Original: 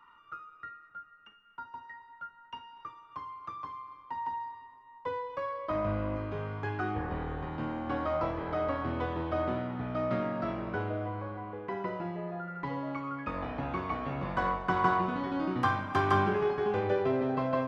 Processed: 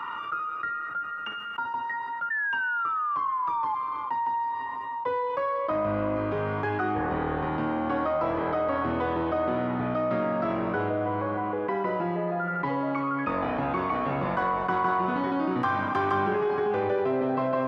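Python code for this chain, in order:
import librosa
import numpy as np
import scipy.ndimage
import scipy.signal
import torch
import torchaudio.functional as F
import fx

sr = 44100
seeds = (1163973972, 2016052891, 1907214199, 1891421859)

y = fx.highpass(x, sr, hz=250.0, slope=6)
y = fx.high_shelf(y, sr, hz=3600.0, db=-10.5)
y = fx.spec_paint(y, sr, seeds[0], shape='fall', start_s=2.3, length_s=1.45, low_hz=850.0, high_hz=1800.0, level_db=-38.0)
y = fx.echo_feedback(y, sr, ms=325, feedback_pct=52, wet_db=-22)
y = fx.env_flatten(y, sr, amount_pct=70)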